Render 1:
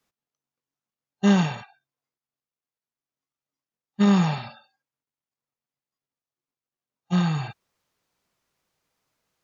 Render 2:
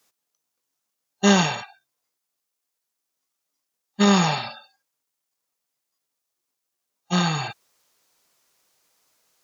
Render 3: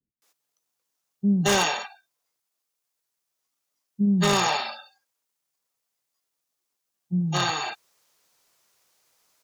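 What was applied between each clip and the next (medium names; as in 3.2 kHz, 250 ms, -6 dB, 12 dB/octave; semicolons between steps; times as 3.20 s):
tone controls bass -10 dB, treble +8 dB; trim +6.5 dB
bands offset in time lows, highs 220 ms, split 260 Hz; wavefolder -14 dBFS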